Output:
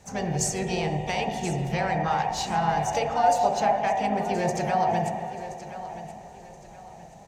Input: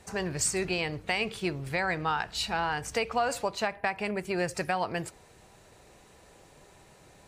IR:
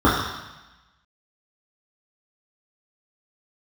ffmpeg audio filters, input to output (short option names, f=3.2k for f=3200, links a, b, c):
-filter_complex "[0:a]asplit=2[a][b];[1:a]atrim=start_sample=2205,asetrate=22932,aresample=44100[c];[b][c]afir=irnorm=-1:irlink=0,volume=-26.5dB[d];[a][d]amix=inputs=2:normalize=0,asplit=2[e][f];[f]asetrate=55563,aresample=44100,atempo=0.793701,volume=-8dB[g];[e][g]amix=inputs=2:normalize=0,equalizer=f=800:t=o:w=0.33:g=9,equalizer=f=6.3k:t=o:w=0.33:g=11,equalizer=f=10k:t=o:w=0.33:g=-5,aecho=1:1:1025|2050|3075:0.211|0.0697|0.023,volume=-4dB"